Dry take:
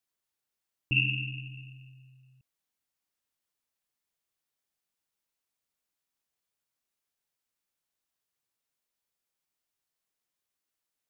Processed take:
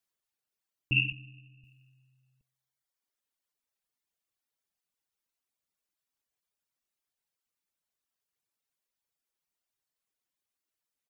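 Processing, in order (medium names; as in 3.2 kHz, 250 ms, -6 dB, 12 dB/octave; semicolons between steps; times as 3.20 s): 1.12–1.64 s: band-pass 100–2200 Hz; feedback delay 137 ms, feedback 44%, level -20 dB; reverb removal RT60 1.4 s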